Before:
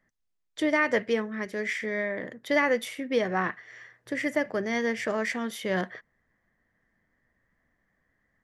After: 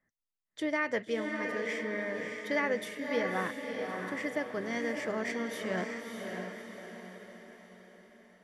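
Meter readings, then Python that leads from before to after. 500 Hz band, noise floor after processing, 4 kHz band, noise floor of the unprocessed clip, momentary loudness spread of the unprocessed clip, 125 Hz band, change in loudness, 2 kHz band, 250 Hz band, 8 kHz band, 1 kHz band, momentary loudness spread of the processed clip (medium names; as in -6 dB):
-5.0 dB, under -85 dBFS, -5.0 dB, -77 dBFS, 12 LU, -5.0 dB, -6.0 dB, -5.0 dB, -5.0 dB, -5.0 dB, -5.0 dB, 16 LU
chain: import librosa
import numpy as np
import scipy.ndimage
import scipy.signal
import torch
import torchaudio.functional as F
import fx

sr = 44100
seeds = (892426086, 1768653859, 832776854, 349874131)

y = fx.noise_reduce_blind(x, sr, reduce_db=7)
y = fx.echo_diffused(y, sr, ms=613, feedback_pct=49, wet_db=-4.0)
y = F.gain(torch.from_numpy(y), -7.0).numpy()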